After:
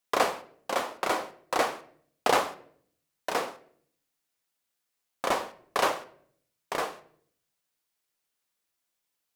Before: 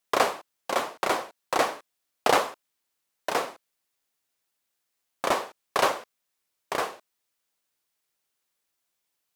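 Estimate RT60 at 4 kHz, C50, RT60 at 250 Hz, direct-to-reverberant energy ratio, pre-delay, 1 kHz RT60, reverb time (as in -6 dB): 0.45 s, 16.0 dB, 0.85 s, 10.0 dB, 4 ms, 0.55 s, 0.60 s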